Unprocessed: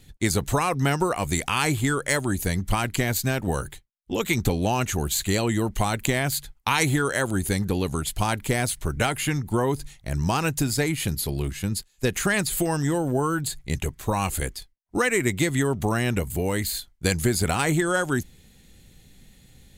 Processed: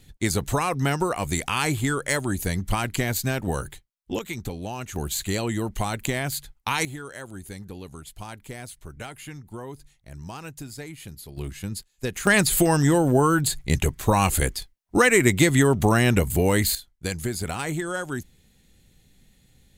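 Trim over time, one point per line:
-1 dB
from 4.19 s -9.5 dB
from 4.96 s -3 dB
from 6.85 s -14 dB
from 11.37 s -5 dB
from 12.27 s +5 dB
from 16.75 s -6 dB

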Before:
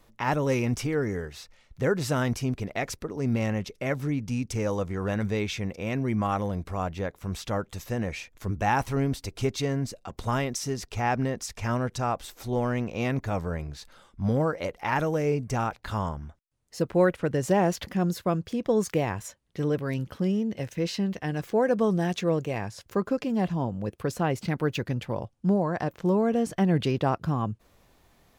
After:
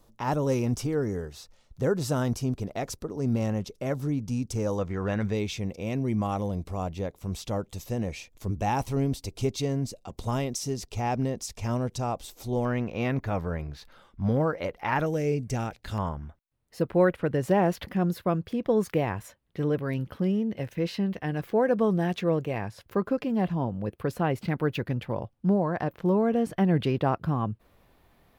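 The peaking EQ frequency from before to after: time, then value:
peaking EQ -10.5 dB 1.1 oct
2.1 kHz
from 4.79 s 11 kHz
from 5.33 s 1.6 kHz
from 12.65 s 7.9 kHz
from 15.06 s 1.1 kHz
from 15.98 s 6.7 kHz

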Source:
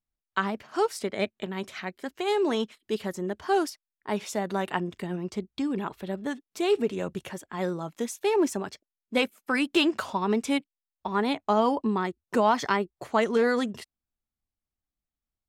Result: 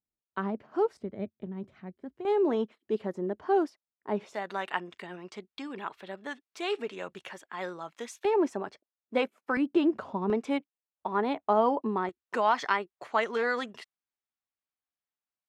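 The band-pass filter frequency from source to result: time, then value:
band-pass filter, Q 0.59
300 Hz
from 0.97 s 100 Hz
from 2.25 s 410 Hz
from 4.34 s 1.8 kHz
from 8.25 s 710 Hz
from 9.57 s 270 Hz
from 10.30 s 660 Hz
from 12.09 s 1.6 kHz

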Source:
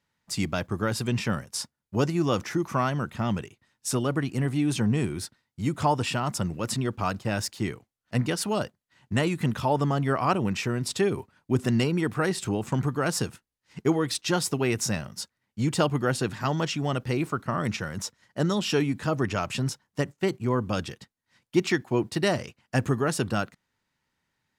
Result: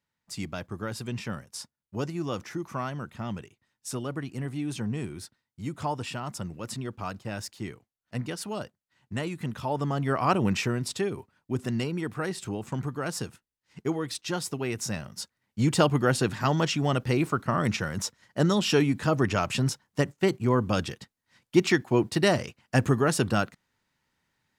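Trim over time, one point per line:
9.52 s -7 dB
10.53 s +2.5 dB
11.10 s -5.5 dB
14.75 s -5.5 dB
15.60 s +2 dB

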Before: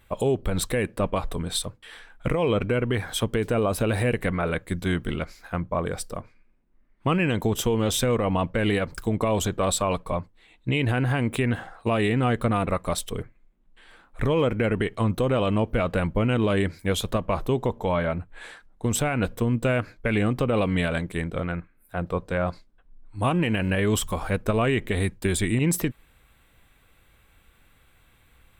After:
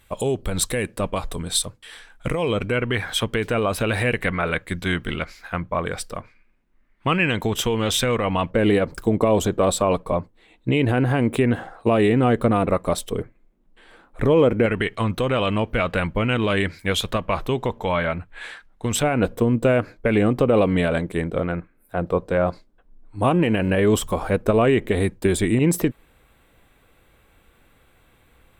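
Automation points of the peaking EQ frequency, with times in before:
peaking EQ +7.5 dB 2.4 oct
7.9 kHz
from 2.72 s 2.3 kHz
from 8.51 s 390 Hz
from 14.66 s 2.4 kHz
from 19.03 s 440 Hz

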